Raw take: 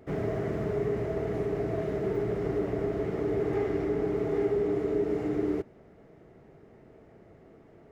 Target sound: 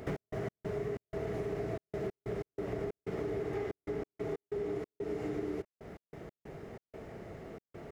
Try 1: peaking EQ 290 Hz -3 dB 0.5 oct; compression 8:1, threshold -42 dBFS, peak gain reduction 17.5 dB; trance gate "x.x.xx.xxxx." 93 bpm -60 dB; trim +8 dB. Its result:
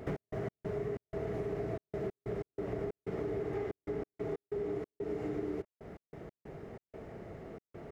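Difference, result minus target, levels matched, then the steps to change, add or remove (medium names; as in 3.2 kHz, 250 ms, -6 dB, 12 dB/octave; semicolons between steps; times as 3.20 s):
4 kHz band -4.0 dB
add after compression: treble shelf 2.3 kHz +6 dB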